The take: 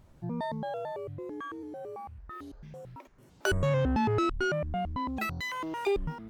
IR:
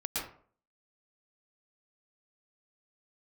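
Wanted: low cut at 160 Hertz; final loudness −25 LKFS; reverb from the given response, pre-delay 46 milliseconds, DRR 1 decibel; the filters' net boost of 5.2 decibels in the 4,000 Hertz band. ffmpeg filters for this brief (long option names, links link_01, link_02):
-filter_complex "[0:a]highpass=160,equalizer=frequency=4000:width_type=o:gain=7,asplit=2[link_01][link_02];[1:a]atrim=start_sample=2205,adelay=46[link_03];[link_02][link_03]afir=irnorm=-1:irlink=0,volume=-6dB[link_04];[link_01][link_04]amix=inputs=2:normalize=0,volume=5.5dB"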